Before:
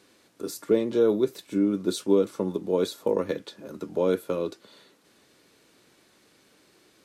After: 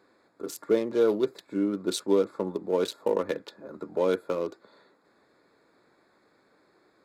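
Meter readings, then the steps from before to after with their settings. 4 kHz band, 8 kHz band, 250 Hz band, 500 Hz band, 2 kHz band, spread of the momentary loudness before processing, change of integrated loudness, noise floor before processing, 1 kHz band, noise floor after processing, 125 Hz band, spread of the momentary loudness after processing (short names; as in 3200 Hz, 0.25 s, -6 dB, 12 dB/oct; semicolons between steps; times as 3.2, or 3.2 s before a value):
0.0 dB, -0.5 dB, -3.5 dB, -1.5 dB, +1.5 dB, 13 LU, -2.0 dB, -62 dBFS, +1.5 dB, -66 dBFS, -5.5 dB, 13 LU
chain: Wiener smoothing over 15 samples; low shelf 400 Hz -11.5 dB; gain +4 dB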